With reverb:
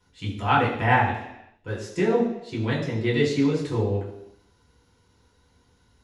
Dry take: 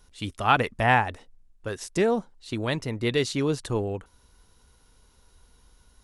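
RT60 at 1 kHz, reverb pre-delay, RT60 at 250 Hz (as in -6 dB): 0.85 s, 3 ms, 0.85 s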